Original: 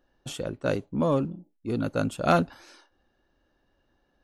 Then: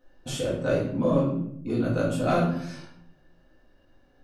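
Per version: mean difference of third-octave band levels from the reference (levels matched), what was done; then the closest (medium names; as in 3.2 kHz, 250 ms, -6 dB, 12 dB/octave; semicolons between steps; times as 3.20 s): 7.5 dB: compression 2:1, threshold -34 dBFS, peak gain reduction 10 dB; simulated room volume 140 m³, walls mixed, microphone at 2 m; trim -1 dB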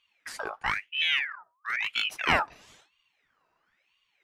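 13.0 dB: band-stop 2.7 kHz; ring modulator with a swept carrier 1.9 kHz, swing 50%, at 1 Hz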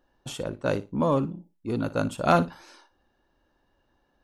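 1.5 dB: peaking EQ 950 Hz +5.5 dB 0.43 oct; on a send: flutter echo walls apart 10 m, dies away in 0.22 s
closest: third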